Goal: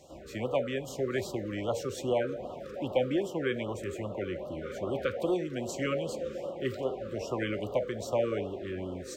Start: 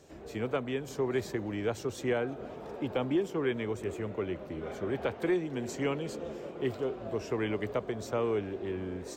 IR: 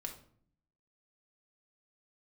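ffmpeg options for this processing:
-filter_complex "[0:a]asplit=2[a][b];[b]highpass=f=540:t=q:w=4.9[c];[1:a]atrim=start_sample=2205[d];[c][d]afir=irnorm=-1:irlink=0,volume=-5.5dB[e];[a][e]amix=inputs=2:normalize=0,afftfilt=real='re*(1-between(b*sr/1024,750*pow(2000/750,0.5+0.5*sin(2*PI*2.5*pts/sr))/1.41,750*pow(2000/750,0.5+0.5*sin(2*PI*2.5*pts/sr))*1.41))':imag='im*(1-between(b*sr/1024,750*pow(2000/750,0.5+0.5*sin(2*PI*2.5*pts/sr))/1.41,750*pow(2000/750,0.5+0.5*sin(2*PI*2.5*pts/sr))*1.41))':win_size=1024:overlap=0.75"

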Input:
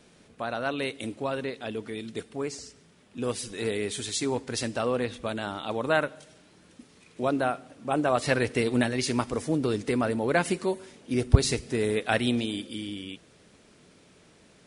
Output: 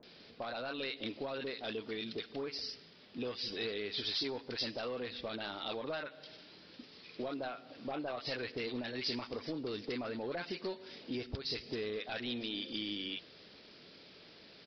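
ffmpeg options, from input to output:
-filter_complex "[0:a]lowshelf=f=160:g=-6.5,acompressor=threshold=-35dB:ratio=6,bass=f=250:g=-4,treble=f=4k:g=14,aresample=11025,asoftclip=type=tanh:threshold=-30dB,aresample=44100,acrossover=split=1000[a][b];[b]adelay=30[c];[a][c]amix=inputs=2:normalize=0,volume=1dB"

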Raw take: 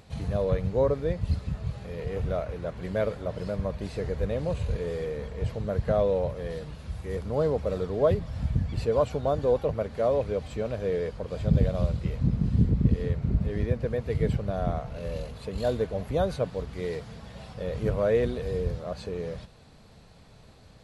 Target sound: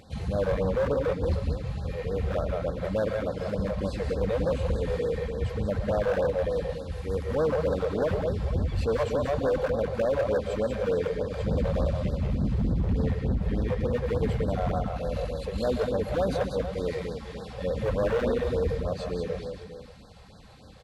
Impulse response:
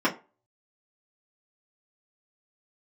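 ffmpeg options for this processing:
-filter_complex "[0:a]highpass=f=49:p=1,highshelf=f=5.1k:g=-4.5,aecho=1:1:3.8:0.39,alimiter=limit=-18dB:level=0:latency=1:release=34,acontrast=24,asplit=2[a][b];[b]aecho=0:1:125|188|458|569:0.266|0.596|0.251|0.126[c];[a][c]amix=inputs=2:normalize=0,volume=18.5dB,asoftclip=hard,volume=-18.5dB,afftfilt=real='re*(1-between(b*sr/1024,230*pow(2600/230,0.5+0.5*sin(2*PI*3.4*pts/sr))/1.41,230*pow(2600/230,0.5+0.5*sin(2*PI*3.4*pts/sr))*1.41))':imag='im*(1-between(b*sr/1024,230*pow(2600/230,0.5+0.5*sin(2*PI*3.4*pts/sr))/1.41,230*pow(2600/230,0.5+0.5*sin(2*PI*3.4*pts/sr))*1.41))':win_size=1024:overlap=0.75,volume=-2.5dB"

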